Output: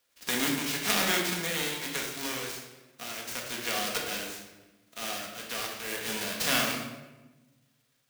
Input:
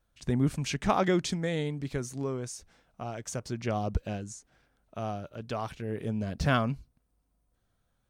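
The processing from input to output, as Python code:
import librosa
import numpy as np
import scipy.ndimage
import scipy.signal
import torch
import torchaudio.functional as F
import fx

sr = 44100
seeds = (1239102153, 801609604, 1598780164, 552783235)

y = fx.envelope_flatten(x, sr, power=0.3)
y = scipy.signal.sosfilt(scipy.signal.butter(2, 390.0, 'highpass', fs=sr, output='sos'), y)
y = fx.peak_eq(y, sr, hz=820.0, db=-7.5, octaves=1.6)
y = fx.room_shoebox(y, sr, seeds[0], volume_m3=630.0, walls='mixed', distance_m=1.8)
y = fx.clock_jitter(y, sr, seeds[1], jitter_ms=0.022)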